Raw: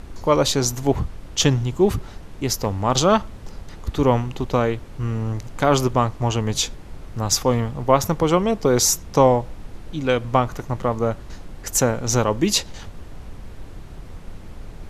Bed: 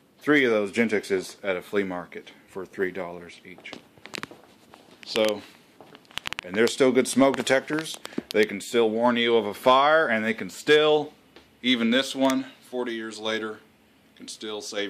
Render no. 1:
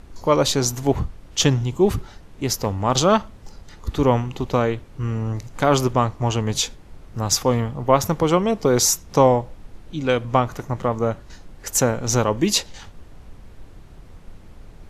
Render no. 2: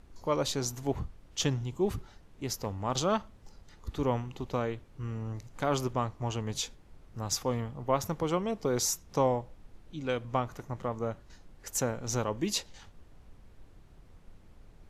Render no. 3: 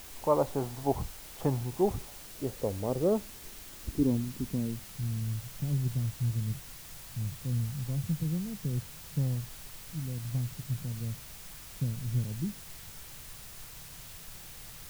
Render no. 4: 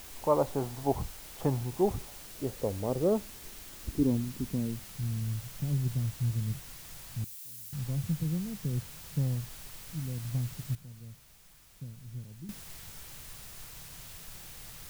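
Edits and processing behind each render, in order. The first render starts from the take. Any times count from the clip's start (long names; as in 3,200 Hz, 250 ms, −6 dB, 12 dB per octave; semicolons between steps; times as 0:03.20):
noise reduction from a noise print 6 dB
level −12 dB
low-pass filter sweep 840 Hz → 150 Hz, 0:01.70–0:05.40; bit-depth reduction 8 bits, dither triangular
0:07.24–0:07.73: first-order pre-emphasis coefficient 0.97; 0:10.75–0:12.49: clip gain −11.5 dB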